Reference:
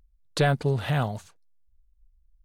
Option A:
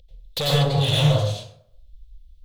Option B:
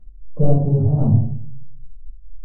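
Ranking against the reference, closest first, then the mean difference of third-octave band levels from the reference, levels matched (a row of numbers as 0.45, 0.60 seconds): A, B; 10.5, 14.5 decibels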